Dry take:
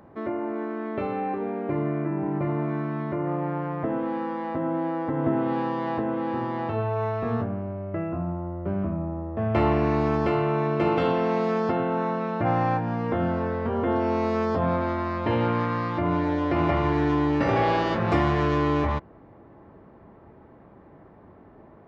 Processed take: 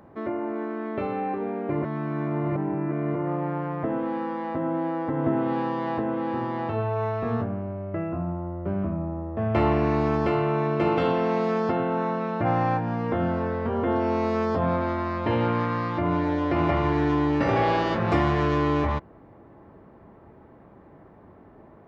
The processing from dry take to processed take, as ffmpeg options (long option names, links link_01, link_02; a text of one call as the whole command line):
ffmpeg -i in.wav -filter_complex "[0:a]asplit=3[link_01][link_02][link_03];[link_01]atrim=end=1.822[link_04];[link_02]atrim=start=1.818:end=3.152,asetpts=PTS-STARTPTS,areverse[link_05];[link_03]atrim=start=3.148[link_06];[link_04][link_05]acrossfade=duration=0.004:curve1=hsin:curve2=hsin[link_07];[link_07][link_06]acrossfade=duration=0.004:curve1=hsin:curve2=hsin" out.wav